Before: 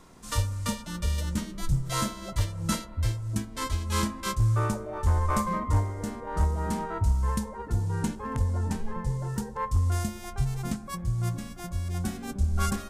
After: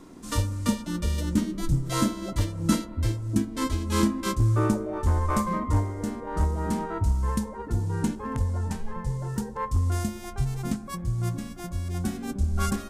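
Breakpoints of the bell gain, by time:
bell 290 Hz 0.92 oct
4.78 s +14 dB
5.23 s +6.5 dB
8.19 s +6.5 dB
8.8 s -5.5 dB
9.47 s +6 dB

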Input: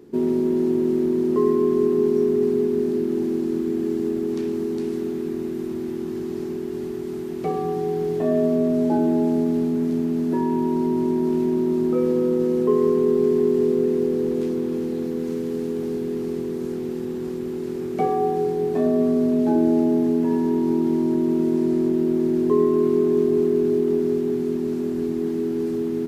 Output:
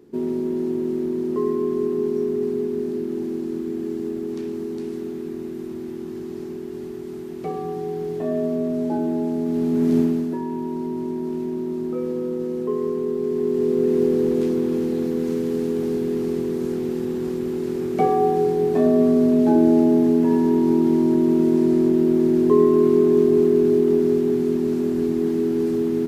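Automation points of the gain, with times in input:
9.39 s -3.5 dB
9.99 s +6 dB
10.38 s -5.5 dB
13.22 s -5.5 dB
14.02 s +3 dB

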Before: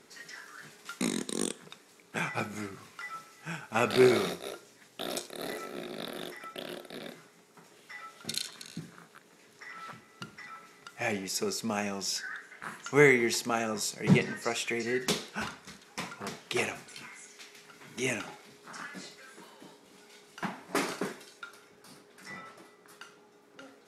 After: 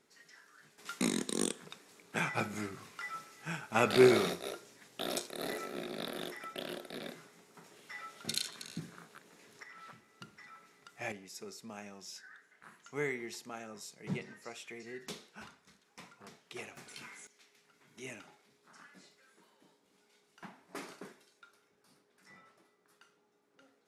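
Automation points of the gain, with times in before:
-12.5 dB
from 0.78 s -1 dB
from 9.63 s -8 dB
from 11.12 s -15 dB
from 16.77 s -3 dB
from 17.27 s -14.5 dB

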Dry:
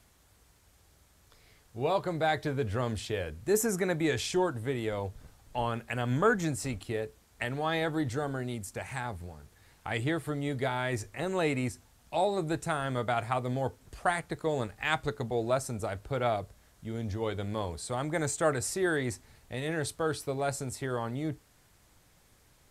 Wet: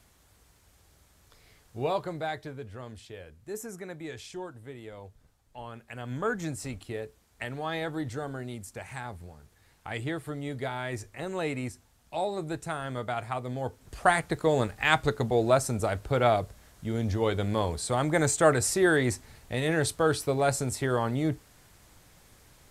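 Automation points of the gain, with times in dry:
1.78 s +1.5 dB
2.71 s -11 dB
5.63 s -11 dB
6.49 s -2.5 dB
13.56 s -2.5 dB
14.08 s +6 dB

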